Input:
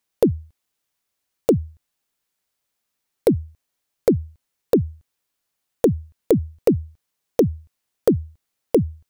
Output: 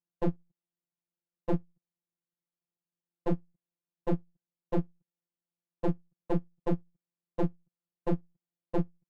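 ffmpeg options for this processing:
ffmpeg -i in.wav -af "bandpass=frequency=190:width_type=q:width=1.3:csg=0,aeval=exprs='clip(val(0),-1,0.0133)':channel_layout=same,afftfilt=real='hypot(re,im)*cos(PI*b)':imag='0':win_size=1024:overlap=0.75" out.wav

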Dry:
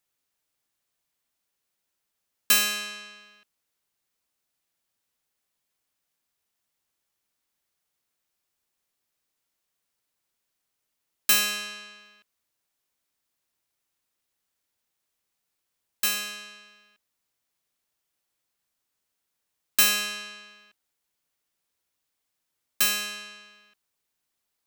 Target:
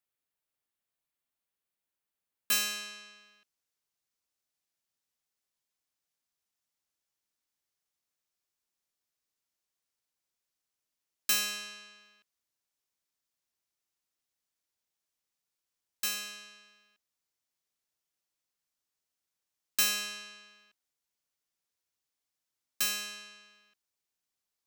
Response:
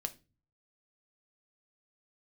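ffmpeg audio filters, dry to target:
-af "asetnsamples=nb_out_samples=441:pad=0,asendcmd='2.52 equalizer g 4',equalizer=frequency=5800:width_type=o:width=0.98:gain=-4.5,volume=-8.5dB"

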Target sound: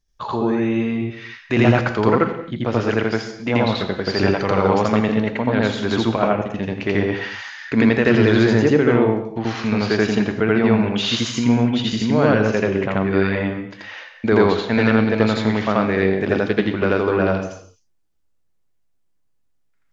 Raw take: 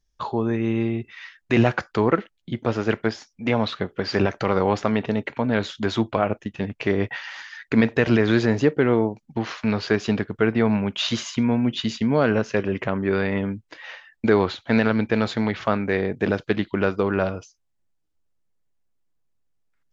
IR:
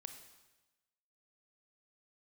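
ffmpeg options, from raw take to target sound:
-filter_complex "[0:a]asplit=2[link_01][link_02];[1:a]atrim=start_sample=2205,afade=type=out:start_time=0.32:duration=0.01,atrim=end_sample=14553,adelay=83[link_03];[link_02][link_03]afir=irnorm=-1:irlink=0,volume=7.5dB[link_04];[link_01][link_04]amix=inputs=2:normalize=0"

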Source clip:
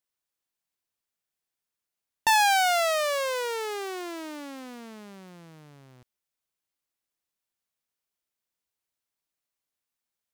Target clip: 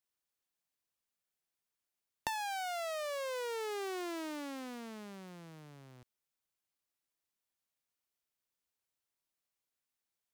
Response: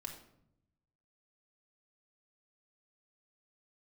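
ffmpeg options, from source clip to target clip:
-filter_complex "[0:a]acrossover=split=370[link_01][link_02];[link_02]acompressor=threshold=-34dB:ratio=5[link_03];[link_01][link_03]amix=inputs=2:normalize=0,volume=-3dB"

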